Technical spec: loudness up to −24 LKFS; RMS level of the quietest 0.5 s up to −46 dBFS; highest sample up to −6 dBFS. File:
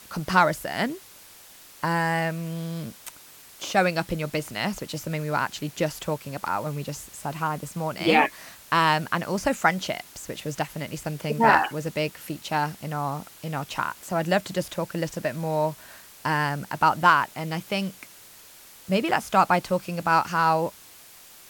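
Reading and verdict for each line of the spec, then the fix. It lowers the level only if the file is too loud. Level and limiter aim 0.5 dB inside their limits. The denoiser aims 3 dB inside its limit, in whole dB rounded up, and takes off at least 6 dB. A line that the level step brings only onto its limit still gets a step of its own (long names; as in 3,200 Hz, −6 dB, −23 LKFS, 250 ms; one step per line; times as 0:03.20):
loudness −25.5 LKFS: in spec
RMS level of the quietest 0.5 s −49 dBFS: in spec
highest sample −4.5 dBFS: out of spec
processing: brickwall limiter −6.5 dBFS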